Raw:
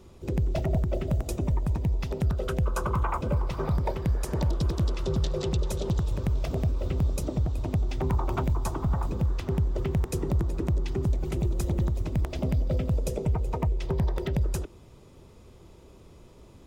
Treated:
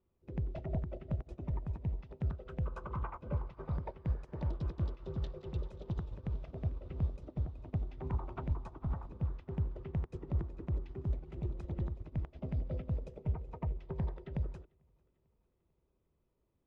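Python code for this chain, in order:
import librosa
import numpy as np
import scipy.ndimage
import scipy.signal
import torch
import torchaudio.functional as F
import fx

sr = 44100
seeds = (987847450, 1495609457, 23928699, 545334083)

y = scipy.signal.sosfilt(scipy.signal.butter(2, 2700.0, 'lowpass', fs=sr, output='sos'), x)
y = fx.echo_feedback(y, sr, ms=446, feedback_pct=55, wet_db=-18)
y = fx.upward_expand(y, sr, threshold_db=-36.0, expansion=2.5)
y = y * librosa.db_to_amplitude(-6.0)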